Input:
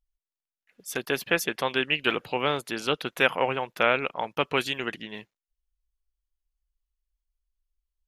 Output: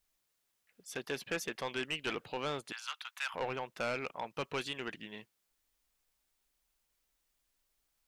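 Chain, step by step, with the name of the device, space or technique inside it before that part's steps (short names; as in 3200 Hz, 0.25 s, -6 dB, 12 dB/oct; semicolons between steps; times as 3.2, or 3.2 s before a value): compact cassette (soft clip -20.5 dBFS, distortion -9 dB; LPF 9400 Hz 12 dB/oct; wow and flutter; white noise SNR 39 dB); 2.72–3.34 steep high-pass 910 Hz 36 dB/oct; gain -8 dB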